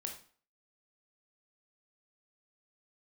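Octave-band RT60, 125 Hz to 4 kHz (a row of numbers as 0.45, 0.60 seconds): 0.40, 0.45, 0.45, 0.45, 0.40, 0.40 seconds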